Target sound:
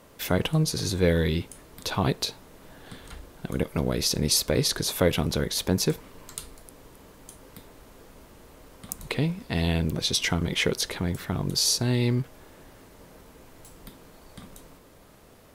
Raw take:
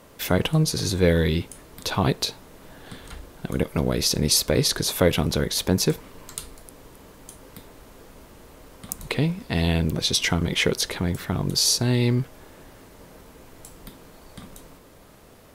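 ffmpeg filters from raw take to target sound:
ffmpeg -i in.wav -filter_complex "[0:a]asplit=3[link_01][link_02][link_03];[link_01]afade=type=out:start_time=12.22:duration=0.02[link_04];[link_02]aeval=exprs='0.0133*(abs(mod(val(0)/0.0133+3,4)-2)-1)':channel_layout=same,afade=type=in:start_time=12.22:duration=0.02,afade=type=out:start_time=13.74:duration=0.02[link_05];[link_03]afade=type=in:start_time=13.74:duration=0.02[link_06];[link_04][link_05][link_06]amix=inputs=3:normalize=0,volume=-3dB" out.wav

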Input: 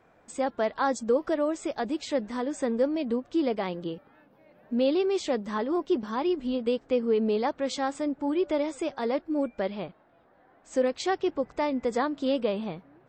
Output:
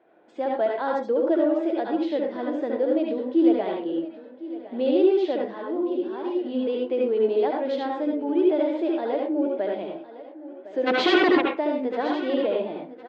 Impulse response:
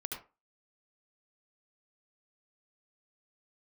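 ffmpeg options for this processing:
-filter_complex "[0:a]asettb=1/sr,asplit=3[link_01][link_02][link_03];[link_01]atrim=end=5.374[link_04];[link_02]atrim=start=5.37:end=6.4,asetpts=PTS-STARTPTS,afade=type=in:duration=0.004:curve=qsin,afade=type=out:start_time=1.026:duration=0.004:curve=qsin,acompressor=threshold=-36dB:ratio=2[link_05];[link_03]atrim=start=6.396[link_06];[link_04][link_05]acrossfade=duration=0.004:curve1=hsin:curve2=qsin[link_07];[link_07][link_06]acrossfade=duration=0.004:curve1=qsin:curve2=hsin,asplit=3[link_08][link_09][link_10];[link_08]afade=type=out:start_time=10.86:duration=0.02[link_11];[link_09]aeval=exprs='0.168*sin(PI/2*5.62*val(0)/0.168)':channel_layout=same,afade=type=in:start_time=10.86:duration=0.02,afade=type=out:start_time=11.4:duration=0.02[link_12];[link_10]afade=type=in:start_time=11.4:duration=0.02[link_13];[link_11][link_12][link_13]amix=inputs=3:normalize=0,highpass=290,equalizer=frequency=330:width_type=q:width=4:gain=10,equalizer=frequency=650:width_type=q:width=4:gain=7,equalizer=frequency=1200:width_type=q:width=4:gain=-8,equalizer=frequency=2300:width_type=q:width=4:gain=-4,lowpass=frequency=3600:width=0.5412,lowpass=frequency=3600:width=1.3066,aecho=1:1:1059|2118:0.158|0.0396[link_14];[1:a]atrim=start_sample=2205[link_15];[link_14][link_15]afir=irnorm=-1:irlink=0,volume=1dB"

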